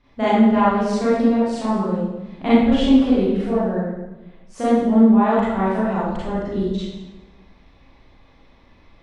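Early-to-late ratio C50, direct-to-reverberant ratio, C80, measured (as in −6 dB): −3.5 dB, −11.0 dB, 0.5 dB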